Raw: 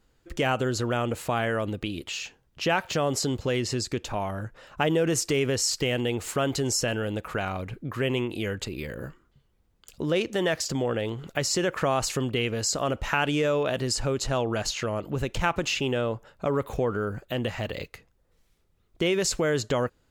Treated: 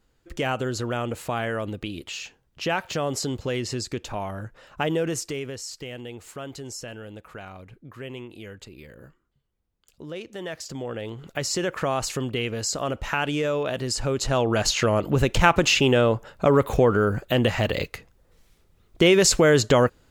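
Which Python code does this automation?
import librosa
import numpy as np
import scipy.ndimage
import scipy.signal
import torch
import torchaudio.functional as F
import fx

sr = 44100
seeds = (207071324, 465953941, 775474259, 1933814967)

y = fx.gain(x, sr, db=fx.line((5.0, -1.0), (5.62, -10.5), (10.22, -10.5), (11.48, -0.5), (13.84, -0.5), (14.84, 8.0)))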